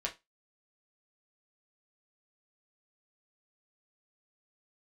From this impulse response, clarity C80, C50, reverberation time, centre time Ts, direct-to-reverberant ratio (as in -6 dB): 25.0 dB, 15.5 dB, 0.20 s, 12 ms, -1.5 dB